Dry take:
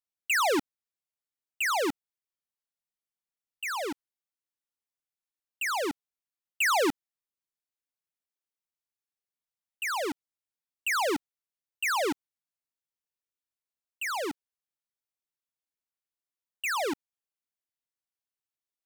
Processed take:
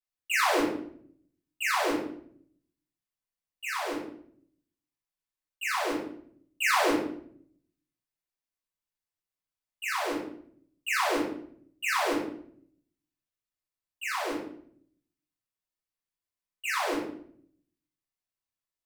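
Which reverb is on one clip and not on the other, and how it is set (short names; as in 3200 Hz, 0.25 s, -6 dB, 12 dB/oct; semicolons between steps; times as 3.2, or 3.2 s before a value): shoebox room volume 99 m³, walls mixed, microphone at 3.9 m; gain -13 dB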